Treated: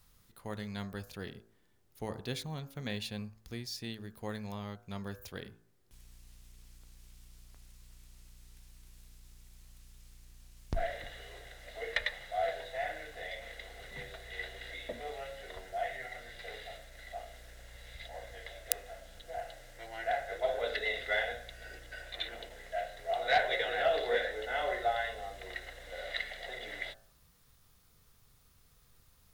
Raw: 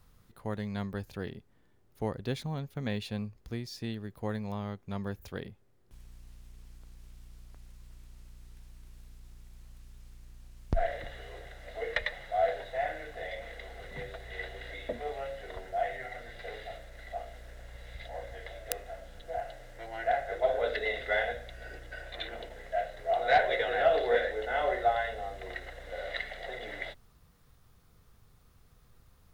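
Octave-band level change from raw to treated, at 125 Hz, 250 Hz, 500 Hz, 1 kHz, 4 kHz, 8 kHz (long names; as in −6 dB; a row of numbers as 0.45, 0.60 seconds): −5.5, −5.5, −5.0, −4.5, +2.0, +4.0 decibels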